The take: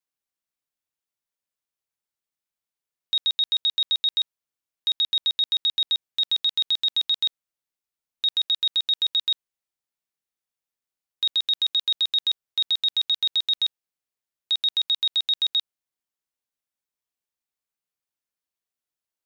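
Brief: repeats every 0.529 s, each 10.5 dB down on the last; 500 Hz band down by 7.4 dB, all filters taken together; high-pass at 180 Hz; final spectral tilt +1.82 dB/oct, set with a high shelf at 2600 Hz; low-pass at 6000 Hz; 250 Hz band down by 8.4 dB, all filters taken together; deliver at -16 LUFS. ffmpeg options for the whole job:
-af "highpass=180,lowpass=6k,equalizer=f=250:t=o:g=-7,equalizer=f=500:t=o:g=-7.5,highshelf=f=2.6k:g=-6.5,aecho=1:1:529|1058|1587:0.299|0.0896|0.0269,volume=11.5dB"

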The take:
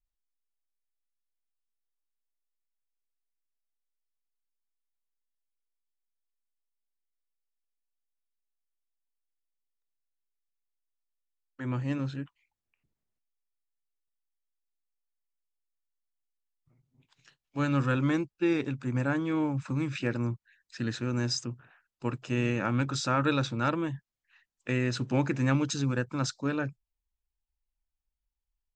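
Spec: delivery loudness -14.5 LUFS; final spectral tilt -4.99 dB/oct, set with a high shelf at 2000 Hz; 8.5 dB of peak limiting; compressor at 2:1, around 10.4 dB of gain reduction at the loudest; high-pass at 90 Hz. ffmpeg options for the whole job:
-af "highpass=90,highshelf=f=2k:g=6,acompressor=threshold=-41dB:ratio=2,volume=26.5dB,alimiter=limit=-3dB:level=0:latency=1"

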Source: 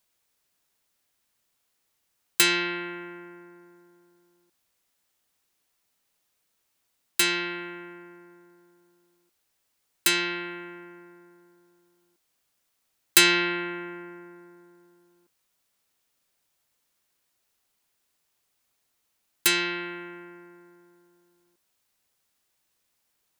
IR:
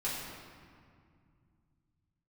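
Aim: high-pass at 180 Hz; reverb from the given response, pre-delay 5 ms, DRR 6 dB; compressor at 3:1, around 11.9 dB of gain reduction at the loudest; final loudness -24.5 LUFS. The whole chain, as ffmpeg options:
-filter_complex "[0:a]highpass=180,acompressor=threshold=-29dB:ratio=3,asplit=2[a][b];[1:a]atrim=start_sample=2205,adelay=5[c];[b][c]afir=irnorm=-1:irlink=0,volume=-11dB[d];[a][d]amix=inputs=2:normalize=0,volume=7.5dB"

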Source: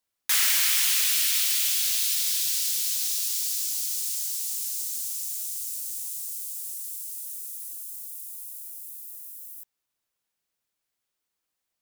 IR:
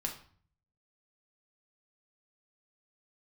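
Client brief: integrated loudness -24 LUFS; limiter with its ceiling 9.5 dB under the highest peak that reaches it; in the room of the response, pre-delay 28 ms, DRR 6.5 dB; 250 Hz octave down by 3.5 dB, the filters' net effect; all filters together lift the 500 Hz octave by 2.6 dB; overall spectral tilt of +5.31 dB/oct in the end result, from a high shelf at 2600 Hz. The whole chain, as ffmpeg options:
-filter_complex "[0:a]equalizer=f=250:t=o:g=-8.5,equalizer=f=500:t=o:g=4.5,highshelf=f=2.6k:g=8,alimiter=limit=-11dB:level=0:latency=1,asplit=2[a][b];[1:a]atrim=start_sample=2205,adelay=28[c];[b][c]afir=irnorm=-1:irlink=0,volume=-8dB[d];[a][d]amix=inputs=2:normalize=0,volume=-4.5dB"

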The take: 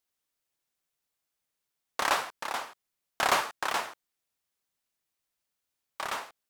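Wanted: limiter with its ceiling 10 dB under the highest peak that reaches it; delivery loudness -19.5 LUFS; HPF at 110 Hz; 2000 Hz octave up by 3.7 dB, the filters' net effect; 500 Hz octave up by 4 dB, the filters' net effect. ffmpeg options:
-af "highpass=110,equalizer=f=500:t=o:g=5,equalizer=f=2k:t=o:g=4.5,volume=13.5dB,alimiter=limit=-5dB:level=0:latency=1"

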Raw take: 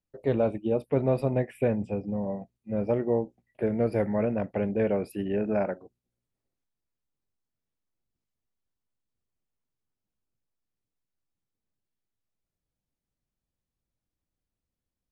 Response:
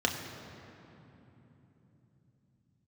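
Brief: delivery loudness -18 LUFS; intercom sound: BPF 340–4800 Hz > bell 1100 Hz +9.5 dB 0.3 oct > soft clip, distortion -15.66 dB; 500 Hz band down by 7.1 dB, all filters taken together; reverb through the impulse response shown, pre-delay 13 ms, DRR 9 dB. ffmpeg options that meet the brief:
-filter_complex "[0:a]equalizer=f=500:t=o:g=-7.5,asplit=2[a][b];[1:a]atrim=start_sample=2205,adelay=13[c];[b][c]afir=irnorm=-1:irlink=0,volume=-18.5dB[d];[a][d]amix=inputs=2:normalize=0,highpass=340,lowpass=4.8k,equalizer=f=1.1k:t=o:w=0.3:g=9.5,asoftclip=threshold=-25dB,volume=18.5dB"

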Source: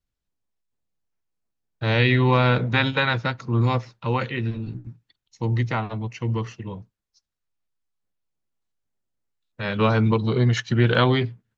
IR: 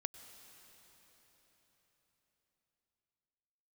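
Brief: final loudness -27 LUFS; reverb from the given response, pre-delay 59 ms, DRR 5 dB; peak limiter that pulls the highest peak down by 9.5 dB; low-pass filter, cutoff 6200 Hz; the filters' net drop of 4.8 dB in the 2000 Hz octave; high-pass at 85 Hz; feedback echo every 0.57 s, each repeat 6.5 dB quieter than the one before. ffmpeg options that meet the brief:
-filter_complex "[0:a]highpass=85,lowpass=6.2k,equalizer=f=2k:t=o:g=-6.5,alimiter=limit=-15.5dB:level=0:latency=1,aecho=1:1:570|1140|1710|2280|2850|3420:0.473|0.222|0.105|0.0491|0.0231|0.0109,asplit=2[a][b];[1:a]atrim=start_sample=2205,adelay=59[c];[b][c]afir=irnorm=-1:irlink=0,volume=-3dB[d];[a][d]amix=inputs=2:normalize=0,volume=-2dB"

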